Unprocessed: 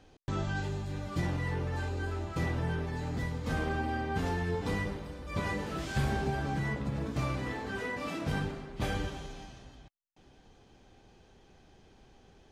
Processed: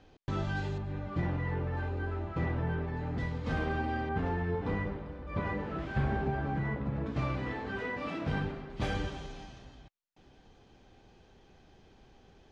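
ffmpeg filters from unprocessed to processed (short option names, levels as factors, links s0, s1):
-af "asetnsamples=n=441:p=0,asendcmd='0.78 lowpass f 2200;3.18 lowpass f 4000;4.09 lowpass f 2000;7.06 lowpass f 3400;8.7 lowpass f 5900',lowpass=4900"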